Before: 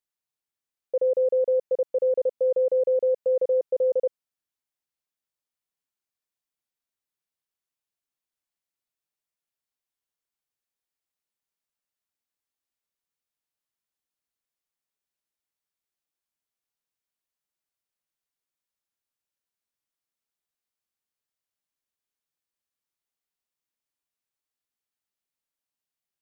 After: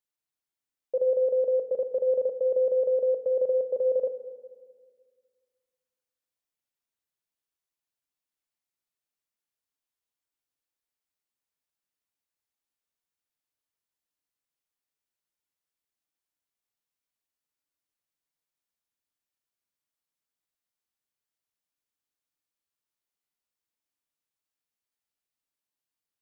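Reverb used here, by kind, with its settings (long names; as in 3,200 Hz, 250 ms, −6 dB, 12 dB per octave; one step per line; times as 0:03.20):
feedback delay network reverb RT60 1.8 s, low-frequency decay 1.3×, high-frequency decay 0.75×, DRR 8.5 dB
level −2 dB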